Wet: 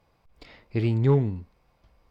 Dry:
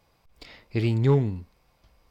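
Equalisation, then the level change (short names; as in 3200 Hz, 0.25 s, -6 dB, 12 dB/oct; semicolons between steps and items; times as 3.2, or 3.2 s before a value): high shelf 3500 Hz -9.5 dB; 0.0 dB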